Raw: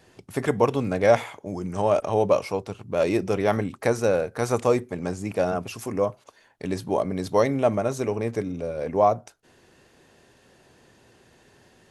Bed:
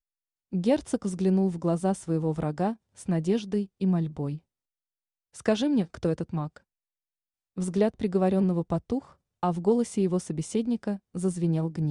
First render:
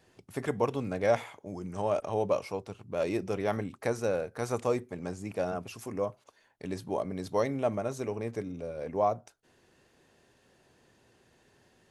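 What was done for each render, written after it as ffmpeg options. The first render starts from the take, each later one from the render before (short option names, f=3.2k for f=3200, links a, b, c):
-af "volume=-8dB"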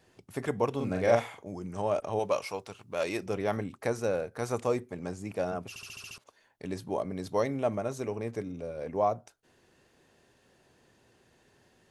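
-filter_complex "[0:a]asettb=1/sr,asplit=3[a][b][c];[a]atrim=end=0.764[d];[b]atrim=start=0.76:end=1.48,asetpts=PTS-STARTPTS,afade=t=in:d=0.004:c=qsin,afade=t=out:st=0.716:d=0.004:c=qsin,asplit=2[e][f];[f]adelay=43,volume=-3dB[g];[e][g]amix=inputs=2:normalize=0,atrim=end_sample=31752[h];[c]atrim=start=1.476[i];[d][h]acrossfade=d=0.004:c1=hsin:c2=qsin[j];[j][i]acrossfade=d=0.004:c1=qsin:c2=hsin,asettb=1/sr,asplit=3[k][l][m];[k]atrim=end=2.194[n];[l]atrim=start=2.19:end=3.26,asetpts=PTS-STARTPTS,afade=t=in:d=0.004:c=qsin,afade=t=out:st=1.066:d=0.004:c=qsin,tiltshelf=f=670:g=-6[o];[m]atrim=start=3.256[p];[n][o]acrossfade=d=0.004:c1=hsin:c2=qsin[q];[q][p]acrossfade=d=0.004:c1=qsin:c2=hsin,asplit=8[r][s][t][u][v][w][x][y];[r]atrim=end=5.762[z];[s]atrim=start=5.688:end=5.762[aa];[t]atrim=start=5.688:end=5.762[ab];[u]atrim=start=5.688:end=5.762[ac];[v]atrim=start=5.688:end=5.762[ad];[w]atrim=start=5.688:end=5.762[ae];[x]atrim=start=5.688:end=5.762[af];[y]atrim=start=6.178[ag];[z][aa]acrossfade=d=0.004:c1=hsin:c2=hsin[ah];[ah][ab]acrossfade=d=0.004:c1=hsin:c2=hsin[ai];[ai][ac]acrossfade=d=0.004:c1=hsin:c2=hsin[aj];[aj][ad]acrossfade=d=0.004:c1=hsin:c2=hsin[ak];[ak][ae]acrossfade=d=0.004:c1=hsin:c2=hsin[al];[al][af]acrossfade=d=0.004:c1=hsin:c2=hsin[am];[am][ag]acrossfade=d=0.004:c1=hsin:c2=hsin"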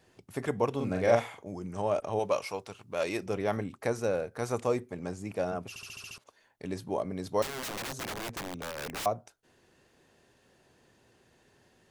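-filter_complex "[0:a]asettb=1/sr,asplit=3[a][b][c];[a]atrim=end=7.424[d];[b]atrim=start=7.42:end=9.06,asetpts=PTS-STARTPTS,afade=t=in:d=0.004:c=qsin,afade=t=out:st=1.636:d=0.004:c=qsin,aeval=exprs='(mod(39.8*val(0)+1,2)-1)/39.8':c=same[e];[c]atrim=start=9.056[f];[d][e]acrossfade=d=0.004:c1=hsin:c2=qsin[g];[g][f]acrossfade=d=0.004:c1=qsin:c2=hsin"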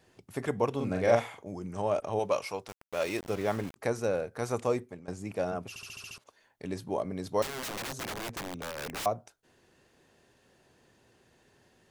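-filter_complex "[0:a]asettb=1/sr,asplit=3[a][b][c];[a]atrim=end=2.684[d];[b]atrim=start=2.68:end=3.76,asetpts=PTS-STARTPTS,afade=t=in:d=0.004:c=qsin,afade=t=out:st=1.076:d=0.004:c=qsin,aeval=exprs='val(0)*gte(abs(val(0)),0.01)':c=same[e];[c]atrim=start=3.756[f];[d][e]acrossfade=d=0.004:c1=hsin:c2=qsin[g];[g][f]acrossfade=d=0.004:c1=qsin:c2=hsin,asplit=2[h][i];[h]atrim=end=5.08,asetpts=PTS-STARTPTS,afade=t=out:st=4.68:d=0.4:c=qsin:silence=0.112202[j];[i]atrim=start=5.08,asetpts=PTS-STARTPTS,afade=t=in:d=0.004:c=hsin:silence=0.112202[k];[j][k]concat=n=2:v=0:a=1"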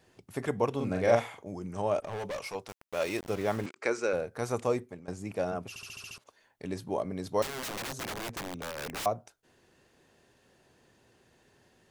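-filter_complex "[0:a]asettb=1/sr,asplit=3[a][b][c];[a]atrim=end=1.994[d];[b]atrim=start=1.99:end=2.55,asetpts=PTS-STARTPTS,afade=t=in:d=0.004:c=qsin,afade=t=out:st=0.556:d=0.004:c=qsin,volume=33.5dB,asoftclip=hard,volume=-33.5dB[e];[c]atrim=start=2.546[f];[d][e]acrossfade=d=0.004:c1=hsin:c2=qsin[g];[g][f]acrossfade=d=0.004:c1=qsin:c2=hsin,asettb=1/sr,asplit=3[h][i][j];[h]atrim=end=3.664[k];[i]atrim=start=3.66:end=4.13,asetpts=PTS-STARTPTS,afade=t=in:d=0.004:c=qsin,afade=t=out:st=0.466:d=0.004:c=qsin,highpass=310,equalizer=f=370:t=q:w=4:g=6,equalizer=f=720:t=q:w=4:g=-6,equalizer=f=1.4k:t=q:w=4:g=7,equalizer=f=2.3k:t=q:w=4:g=9,equalizer=f=4.8k:t=q:w=4:g=4,equalizer=f=7.6k:t=q:w=4:g=5,lowpass=f=8k:w=0.5412,lowpass=f=8k:w=1.3066[l];[j]atrim=start=4.126[m];[k][l]acrossfade=d=0.004:c1=hsin:c2=qsin[n];[n][m]acrossfade=d=0.004:c1=qsin:c2=hsin"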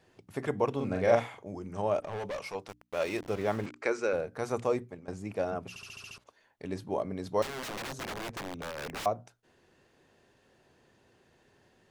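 -af "highshelf=f=6.3k:g=-8,bandreject=f=60:t=h:w=6,bandreject=f=120:t=h:w=6,bandreject=f=180:t=h:w=6,bandreject=f=240:t=h:w=6,bandreject=f=300:t=h:w=6"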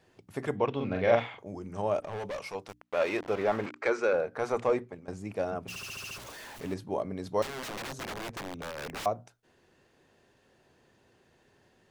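-filter_complex "[0:a]asettb=1/sr,asplit=3[a][b][c];[a]atrim=end=0.574[d];[b]atrim=start=0.57:end=1.39,asetpts=PTS-STARTPTS,afade=t=in:d=0.004:c=qsin,afade=t=out:st=0.816:d=0.004:c=qsin,lowpass=f=3.3k:t=q:w=1.8[e];[c]atrim=start=1.386[f];[d][e]acrossfade=d=0.004:c1=hsin:c2=qsin[g];[g][f]acrossfade=d=0.004:c1=qsin:c2=hsin,asettb=1/sr,asplit=3[h][i][j];[h]atrim=end=2.814[k];[i]atrim=start=2.81:end=4.93,asetpts=PTS-STARTPTS,afade=t=in:d=0.004:c=qsin,afade=t=out:st=2.116:d=0.004:c=qsin,asplit=2[l][m];[m]highpass=f=720:p=1,volume=14dB,asoftclip=type=tanh:threshold=-14.5dB[n];[l][n]amix=inputs=2:normalize=0,lowpass=f=1.7k:p=1,volume=-6dB[o];[j]atrim=start=4.926[p];[k][o]acrossfade=d=0.004:c1=hsin:c2=qsin[q];[q][p]acrossfade=d=0.004:c1=qsin:c2=hsin,asettb=1/sr,asplit=3[r][s][t];[r]atrim=end=5.684[u];[s]atrim=start=5.68:end=6.74,asetpts=PTS-STARTPTS,afade=t=in:d=0.004:c=qsin,afade=t=out:st=1.056:d=0.004:c=qsin,aeval=exprs='val(0)+0.5*0.01*sgn(val(0))':c=same[v];[t]atrim=start=6.736[w];[u][v]acrossfade=d=0.004:c1=hsin:c2=qsin[x];[x][w]acrossfade=d=0.004:c1=qsin:c2=hsin"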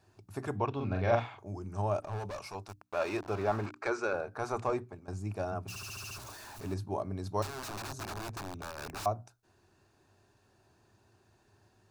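-af "equalizer=f=100:t=o:w=0.33:g=10,equalizer=f=160:t=o:w=0.33:g=-6,equalizer=f=250:t=o:w=0.33:g=-5,equalizer=f=500:t=o:w=0.33:g=-12,equalizer=f=2k:t=o:w=0.33:g=-11,equalizer=f=3.15k:t=o:w=0.33:g=-9"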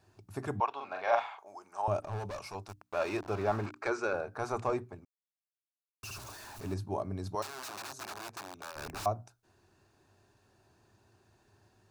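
-filter_complex "[0:a]asettb=1/sr,asplit=3[a][b][c];[a]atrim=end=0.604[d];[b]atrim=start=0.6:end=1.88,asetpts=PTS-STARTPTS,afade=t=in:d=0.004:c=qsin,afade=t=out:st=1.276:d=0.004:c=qsin,highpass=f=820:t=q:w=1.7[e];[c]atrim=start=1.876[f];[d][e]acrossfade=d=0.004:c1=hsin:c2=qsin[g];[g][f]acrossfade=d=0.004:c1=qsin:c2=hsin,asettb=1/sr,asplit=3[h][i][j];[h]atrim=end=7.354[k];[i]atrim=start=7.35:end=8.76,asetpts=PTS-STARTPTS,afade=t=in:d=0.004:c=qsin,afade=t=out:st=1.406:d=0.004:c=qsin,highpass=f=620:p=1[l];[j]atrim=start=8.756[m];[k][l]acrossfade=d=0.004:c1=hsin:c2=qsin[n];[n][m]acrossfade=d=0.004:c1=qsin:c2=hsin,asplit=3[o][p][q];[o]atrim=end=5.05,asetpts=PTS-STARTPTS,afade=t=out:st=5.046:d=0.004:c=hsin[r];[p]atrim=start=5.05:end=6.03,asetpts=PTS-STARTPTS,volume=0[s];[q]atrim=start=6.03,asetpts=PTS-STARTPTS,afade=t=in:d=0.004:c=hsin[t];[r][s][t]concat=n=3:v=0:a=1"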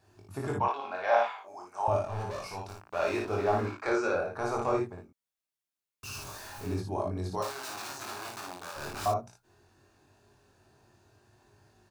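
-filter_complex "[0:a]asplit=2[a][b];[b]adelay=22,volume=-3dB[c];[a][c]amix=inputs=2:normalize=0,aecho=1:1:39|56:0.266|0.668"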